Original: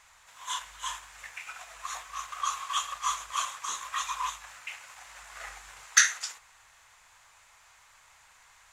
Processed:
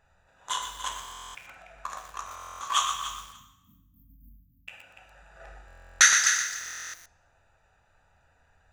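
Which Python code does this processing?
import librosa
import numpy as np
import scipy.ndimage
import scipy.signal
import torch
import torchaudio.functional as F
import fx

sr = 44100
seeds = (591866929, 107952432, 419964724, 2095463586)

y = fx.wiener(x, sr, points=41)
y = fx.brickwall_bandstop(y, sr, low_hz=290.0, high_hz=13000.0, at=(2.82, 4.68))
y = fx.echo_feedback(y, sr, ms=290, feedback_pct=15, wet_db=-11.0)
y = fx.rev_plate(y, sr, seeds[0], rt60_s=0.91, hf_ratio=1.0, predelay_ms=0, drr_db=2.5)
y = fx.buffer_glitch(y, sr, at_s=(1.0, 2.26, 5.66, 6.59), block=1024, repeats=14)
y = fx.echo_crushed(y, sr, ms=120, feedback_pct=35, bits=8, wet_db=-8.0)
y = F.gain(torch.from_numpy(y), 6.0).numpy()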